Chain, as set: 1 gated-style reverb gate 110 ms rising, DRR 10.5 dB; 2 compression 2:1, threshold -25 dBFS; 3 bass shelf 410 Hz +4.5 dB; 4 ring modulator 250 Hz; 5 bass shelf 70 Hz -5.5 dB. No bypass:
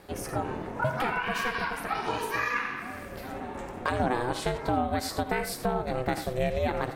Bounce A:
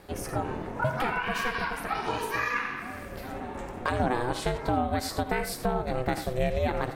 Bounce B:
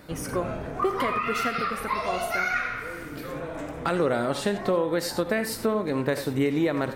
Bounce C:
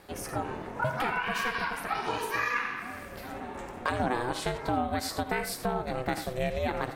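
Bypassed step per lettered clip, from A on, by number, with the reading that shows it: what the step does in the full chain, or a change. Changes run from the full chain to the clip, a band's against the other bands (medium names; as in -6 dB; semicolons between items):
5, 125 Hz band +1.5 dB; 4, crest factor change -2.5 dB; 3, 125 Hz band -2.0 dB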